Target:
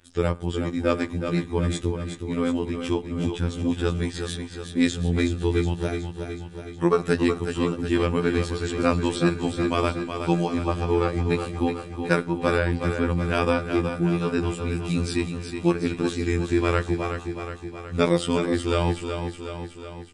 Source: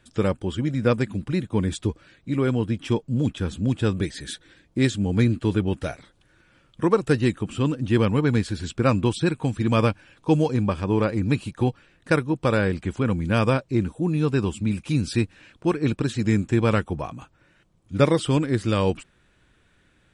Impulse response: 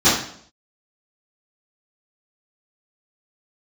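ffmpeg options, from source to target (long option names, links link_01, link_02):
-filter_complex "[0:a]asplit=2[link_01][link_02];[1:a]atrim=start_sample=2205[link_03];[link_02][link_03]afir=irnorm=-1:irlink=0,volume=-40.5dB[link_04];[link_01][link_04]amix=inputs=2:normalize=0,afftfilt=real='hypot(re,im)*cos(PI*b)':imag='0':win_size=2048:overlap=0.75,aecho=1:1:369|738|1107|1476|1845|2214|2583|2952:0.422|0.253|0.152|0.0911|0.0547|0.0328|0.0197|0.0118,volume=3dB"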